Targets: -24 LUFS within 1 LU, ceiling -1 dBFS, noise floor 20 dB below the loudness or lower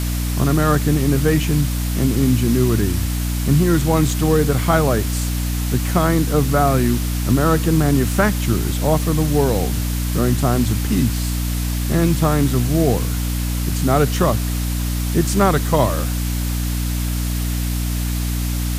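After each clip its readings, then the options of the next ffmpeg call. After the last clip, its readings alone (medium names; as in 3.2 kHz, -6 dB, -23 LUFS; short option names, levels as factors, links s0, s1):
hum 60 Hz; highest harmonic 300 Hz; hum level -19 dBFS; noise floor -21 dBFS; noise floor target -39 dBFS; loudness -18.5 LUFS; peak level -1.5 dBFS; loudness target -24.0 LUFS
-> -af "bandreject=f=60:t=h:w=4,bandreject=f=120:t=h:w=4,bandreject=f=180:t=h:w=4,bandreject=f=240:t=h:w=4,bandreject=f=300:t=h:w=4"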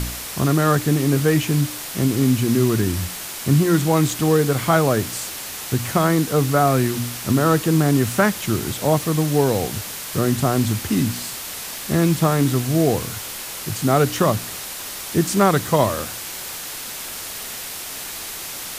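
hum not found; noise floor -32 dBFS; noise floor target -41 dBFS
-> -af "afftdn=nr=9:nf=-32"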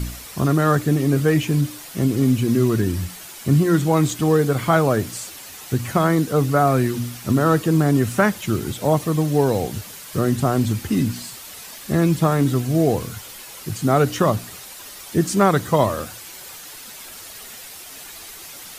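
noise floor -39 dBFS; noise floor target -40 dBFS
-> -af "afftdn=nr=6:nf=-39"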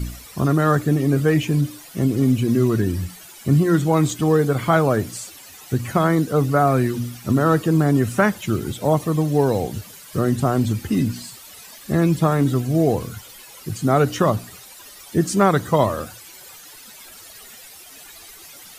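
noise floor -43 dBFS; loudness -20.0 LUFS; peak level -3.0 dBFS; loudness target -24.0 LUFS
-> -af "volume=0.631"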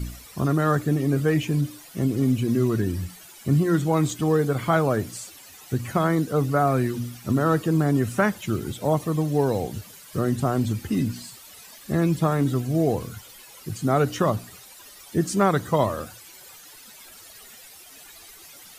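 loudness -24.0 LUFS; peak level -7.0 dBFS; noise floor -47 dBFS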